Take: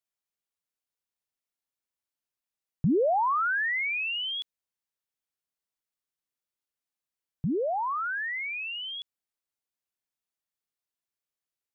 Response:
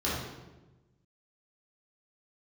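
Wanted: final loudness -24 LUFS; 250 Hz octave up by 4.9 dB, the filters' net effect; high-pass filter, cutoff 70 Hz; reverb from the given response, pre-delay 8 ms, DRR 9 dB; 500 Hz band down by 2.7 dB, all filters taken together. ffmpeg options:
-filter_complex "[0:a]highpass=70,equalizer=f=250:t=o:g=8,equalizer=f=500:t=o:g=-6,asplit=2[s0][s1];[1:a]atrim=start_sample=2205,adelay=8[s2];[s1][s2]afir=irnorm=-1:irlink=0,volume=0.119[s3];[s0][s3]amix=inputs=2:normalize=0,volume=1.41"

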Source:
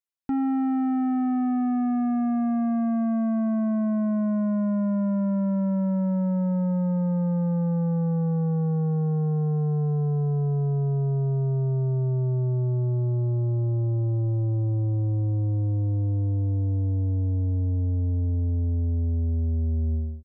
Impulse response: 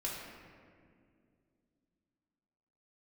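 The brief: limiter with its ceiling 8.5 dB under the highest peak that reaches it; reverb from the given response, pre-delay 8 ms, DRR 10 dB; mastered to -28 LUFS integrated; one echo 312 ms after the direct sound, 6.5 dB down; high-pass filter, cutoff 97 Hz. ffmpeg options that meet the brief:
-filter_complex "[0:a]highpass=97,alimiter=level_in=1.58:limit=0.0631:level=0:latency=1,volume=0.631,aecho=1:1:312:0.473,asplit=2[s0][s1];[1:a]atrim=start_sample=2205,adelay=8[s2];[s1][s2]afir=irnorm=-1:irlink=0,volume=0.251[s3];[s0][s3]amix=inputs=2:normalize=0,volume=1.68"

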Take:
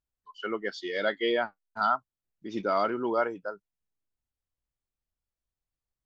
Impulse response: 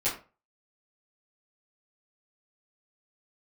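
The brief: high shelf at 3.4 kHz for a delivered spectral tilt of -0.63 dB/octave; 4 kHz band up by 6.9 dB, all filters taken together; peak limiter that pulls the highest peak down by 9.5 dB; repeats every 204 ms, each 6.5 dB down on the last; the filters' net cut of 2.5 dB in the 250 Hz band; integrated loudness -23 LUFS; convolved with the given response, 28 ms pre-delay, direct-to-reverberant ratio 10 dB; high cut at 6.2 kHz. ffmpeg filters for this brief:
-filter_complex "[0:a]lowpass=6200,equalizer=f=250:t=o:g=-4,highshelf=f=3400:g=4,equalizer=f=4000:t=o:g=7,alimiter=limit=0.0708:level=0:latency=1,aecho=1:1:204|408|612|816|1020|1224:0.473|0.222|0.105|0.0491|0.0231|0.0109,asplit=2[s0][s1];[1:a]atrim=start_sample=2205,adelay=28[s2];[s1][s2]afir=irnorm=-1:irlink=0,volume=0.126[s3];[s0][s3]amix=inputs=2:normalize=0,volume=3.35"

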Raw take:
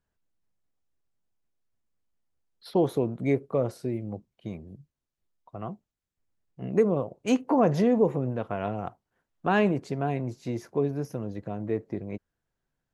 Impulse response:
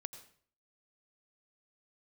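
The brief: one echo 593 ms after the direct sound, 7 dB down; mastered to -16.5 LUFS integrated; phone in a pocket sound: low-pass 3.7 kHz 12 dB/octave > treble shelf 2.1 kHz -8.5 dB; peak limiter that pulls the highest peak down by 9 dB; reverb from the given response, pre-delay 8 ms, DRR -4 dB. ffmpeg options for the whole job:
-filter_complex "[0:a]alimiter=limit=0.106:level=0:latency=1,aecho=1:1:593:0.447,asplit=2[s0][s1];[1:a]atrim=start_sample=2205,adelay=8[s2];[s1][s2]afir=irnorm=-1:irlink=0,volume=2.24[s3];[s0][s3]amix=inputs=2:normalize=0,lowpass=3700,highshelf=f=2100:g=-8.5,volume=3.16"

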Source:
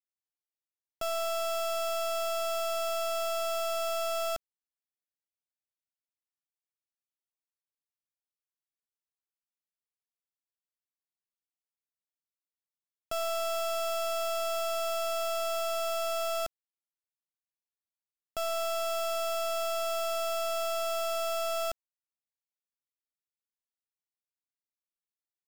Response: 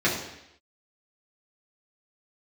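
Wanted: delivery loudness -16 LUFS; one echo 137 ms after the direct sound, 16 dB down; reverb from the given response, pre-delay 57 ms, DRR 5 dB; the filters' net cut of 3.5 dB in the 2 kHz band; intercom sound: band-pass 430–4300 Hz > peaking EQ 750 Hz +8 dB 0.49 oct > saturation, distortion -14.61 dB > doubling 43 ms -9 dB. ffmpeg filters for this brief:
-filter_complex "[0:a]equalizer=f=2000:t=o:g=-5,aecho=1:1:137:0.158,asplit=2[s0][s1];[1:a]atrim=start_sample=2205,adelay=57[s2];[s1][s2]afir=irnorm=-1:irlink=0,volume=0.1[s3];[s0][s3]amix=inputs=2:normalize=0,highpass=430,lowpass=4300,equalizer=f=750:t=o:w=0.49:g=8,asoftclip=threshold=0.0668,asplit=2[s4][s5];[s5]adelay=43,volume=0.355[s6];[s4][s6]amix=inputs=2:normalize=0,volume=5.31"

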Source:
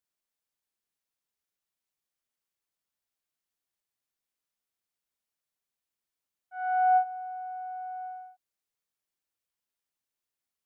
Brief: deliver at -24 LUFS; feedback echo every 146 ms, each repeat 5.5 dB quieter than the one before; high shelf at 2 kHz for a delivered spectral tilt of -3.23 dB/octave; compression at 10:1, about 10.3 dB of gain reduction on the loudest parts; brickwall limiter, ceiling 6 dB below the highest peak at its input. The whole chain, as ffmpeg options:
-af "highshelf=f=2000:g=8.5,acompressor=threshold=0.0355:ratio=10,alimiter=level_in=2.51:limit=0.0631:level=0:latency=1,volume=0.398,aecho=1:1:146|292|438|584|730|876|1022:0.531|0.281|0.149|0.079|0.0419|0.0222|0.0118,volume=2.82"

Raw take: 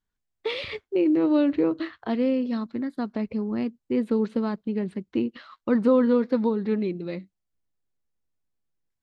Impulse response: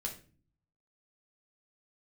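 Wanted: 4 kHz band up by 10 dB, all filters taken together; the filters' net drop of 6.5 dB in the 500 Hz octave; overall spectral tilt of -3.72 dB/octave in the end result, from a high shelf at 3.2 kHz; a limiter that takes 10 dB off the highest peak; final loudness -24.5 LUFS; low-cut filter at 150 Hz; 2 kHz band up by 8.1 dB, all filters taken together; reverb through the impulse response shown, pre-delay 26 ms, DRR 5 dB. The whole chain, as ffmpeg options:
-filter_complex "[0:a]highpass=150,equalizer=f=500:t=o:g=-8,equalizer=f=2000:t=o:g=7,highshelf=f=3200:g=3,equalizer=f=4000:t=o:g=8,alimiter=limit=0.0841:level=0:latency=1,asplit=2[s0][s1];[1:a]atrim=start_sample=2205,adelay=26[s2];[s1][s2]afir=irnorm=-1:irlink=0,volume=0.562[s3];[s0][s3]amix=inputs=2:normalize=0,volume=1.88"

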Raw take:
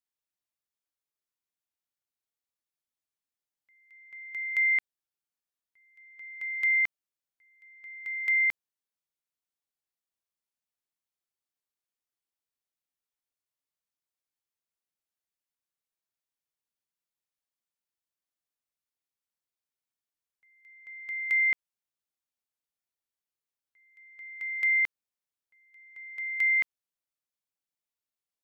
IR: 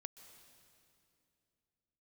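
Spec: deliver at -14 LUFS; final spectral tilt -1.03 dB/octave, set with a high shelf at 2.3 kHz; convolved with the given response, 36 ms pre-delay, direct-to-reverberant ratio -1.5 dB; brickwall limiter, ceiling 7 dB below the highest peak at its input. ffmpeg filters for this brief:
-filter_complex "[0:a]highshelf=f=2300:g=6.5,alimiter=limit=0.0668:level=0:latency=1,asplit=2[s0][s1];[1:a]atrim=start_sample=2205,adelay=36[s2];[s1][s2]afir=irnorm=-1:irlink=0,volume=2.24[s3];[s0][s3]amix=inputs=2:normalize=0,volume=3.55"

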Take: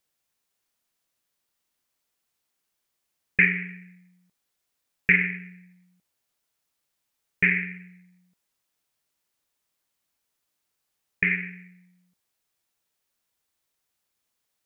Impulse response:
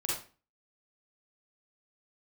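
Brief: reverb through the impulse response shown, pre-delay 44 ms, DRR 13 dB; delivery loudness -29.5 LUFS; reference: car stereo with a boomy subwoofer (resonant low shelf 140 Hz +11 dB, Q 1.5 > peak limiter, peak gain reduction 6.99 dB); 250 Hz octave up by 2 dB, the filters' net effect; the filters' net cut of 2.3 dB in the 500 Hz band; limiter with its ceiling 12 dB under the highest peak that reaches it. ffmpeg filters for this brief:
-filter_complex "[0:a]equalizer=f=250:t=o:g=5.5,equalizer=f=500:t=o:g=-4,alimiter=limit=0.141:level=0:latency=1,asplit=2[s0][s1];[1:a]atrim=start_sample=2205,adelay=44[s2];[s1][s2]afir=irnorm=-1:irlink=0,volume=0.126[s3];[s0][s3]amix=inputs=2:normalize=0,lowshelf=f=140:t=q:w=1.5:g=11,volume=1.58,alimiter=limit=0.141:level=0:latency=1"

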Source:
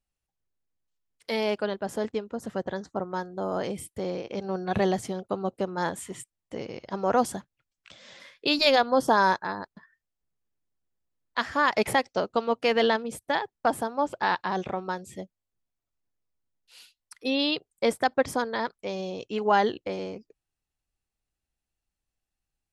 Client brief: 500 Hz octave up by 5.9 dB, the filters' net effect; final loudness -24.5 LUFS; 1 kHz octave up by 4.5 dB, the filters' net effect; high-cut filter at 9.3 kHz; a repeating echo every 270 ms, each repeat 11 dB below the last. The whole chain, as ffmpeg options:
-af "lowpass=9300,equalizer=f=500:t=o:g=6,equalizer=f=1000:t=o:g=3.5,aecho=1:1:270|540|810:0.282|0.0789|0.0221,volume=0.841"

